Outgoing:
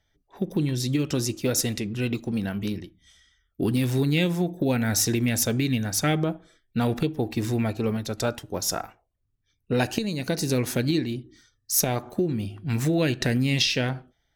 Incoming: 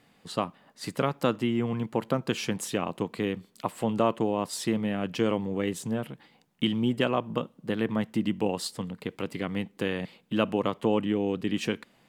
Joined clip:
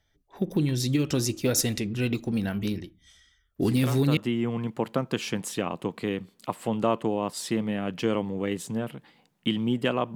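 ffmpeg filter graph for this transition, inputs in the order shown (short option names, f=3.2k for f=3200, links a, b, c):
-filter_complex "[1:a]asplit=2[a][b];[0:a]apad=whole_dur=10.15,atrim=end=10.15,atrim=end=4.172[c];[b]atrim=start=1.328:end=7.31[d];[a]atrim=start=0.72:end=1.33,asetpts=PTS-STARTPTS,volume=-7.5dB,afade=t=in:d=0.004:c=hsin,afade=t=out:st=0.606:d=0.004:c=hsin,adelay=3560[e];[c][d]acrossfade=d=0.004:c1=hsin:c2=hsin[f];[f][e]amix=inputs=2:normalize=0"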